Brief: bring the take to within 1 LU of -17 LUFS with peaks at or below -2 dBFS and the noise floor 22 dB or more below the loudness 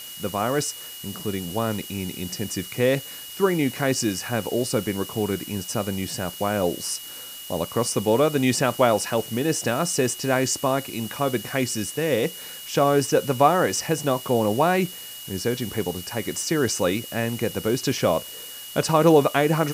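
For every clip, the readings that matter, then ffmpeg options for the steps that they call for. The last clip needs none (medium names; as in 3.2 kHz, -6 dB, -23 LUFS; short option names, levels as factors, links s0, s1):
steady tone 2.9 kHz; tone level -40 dBFS; noise floor -38 dBFS; noise floor target -46 dBFS; loudness -23.5 LUFS; peak level -4.5 dBFS; loudness target -17.0 LUFS
-> -af "bandreject=f=2900:w=30"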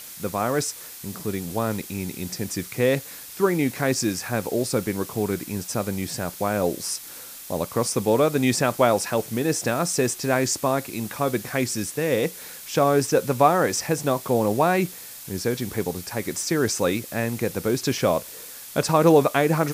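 steady tone not found; noise floor -40 dBFS; noise floor target -46 dBFS
-> -af "afftdn=nr=6:nf=-40"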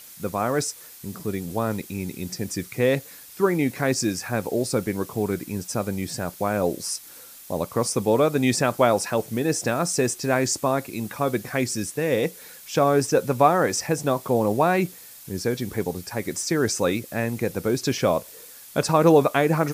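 noise floor -45 dBFS; noise floor target -46 dBFS
-> -af "afftdn=nr=6:nf=-45"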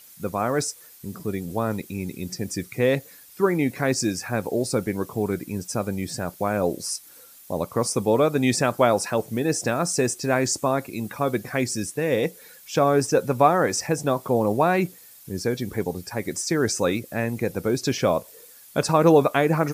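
noise floor -48 dBFS; loudness -24.0 LUFS; peak level -4.5 dBFS; loudness target -17.0 LUFS
-> -af "volume=2.24,alimiter=limit=0.794:level=0:latency=1"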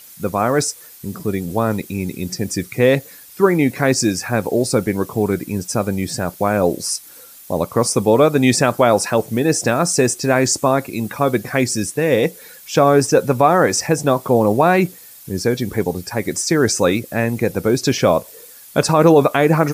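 loudness -17.5 LUFS; peak level -2.0 dBFS; noise floor -41 dBFS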